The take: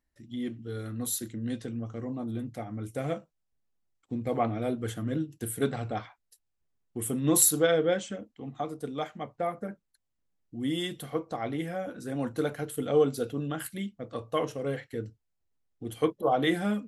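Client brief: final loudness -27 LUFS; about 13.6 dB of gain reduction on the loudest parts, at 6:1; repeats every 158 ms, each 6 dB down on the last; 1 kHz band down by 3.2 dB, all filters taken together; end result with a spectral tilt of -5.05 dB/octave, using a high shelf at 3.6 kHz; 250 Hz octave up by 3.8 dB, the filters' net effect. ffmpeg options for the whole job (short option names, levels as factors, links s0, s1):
-af "equalizer=f=250:t=o:g=5,equalizer=f=1000:t=o:g=-6,highshelf=f=3600:g=4.5,acompressor=threshold=0.0398:ratio=6,aecho=1:1:158|316|474|632|790|948:0.501|0.251|0.125|0.0626|0.0313|0.0157,volume=2"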